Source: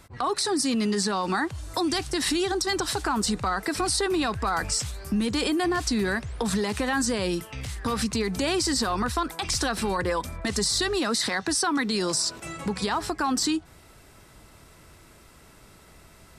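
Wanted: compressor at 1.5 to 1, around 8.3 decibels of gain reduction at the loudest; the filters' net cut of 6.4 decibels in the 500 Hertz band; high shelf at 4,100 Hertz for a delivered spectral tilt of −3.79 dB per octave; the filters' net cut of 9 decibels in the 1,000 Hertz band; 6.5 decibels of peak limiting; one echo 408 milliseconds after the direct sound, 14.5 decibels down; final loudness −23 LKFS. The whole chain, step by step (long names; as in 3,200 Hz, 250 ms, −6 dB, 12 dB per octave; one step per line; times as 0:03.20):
parametric band 500 Hz −7.5 dB
parametric band 1,000 Hz −9 dB
high-shelf EQ 4,100 Hz −6 dB
downward compressor 1.5 to 1, threshold −48 dBFS
brickwall limiter −29.5 dBFS
single-tap delay 408 ms −14.5 dB
level +15.5 dB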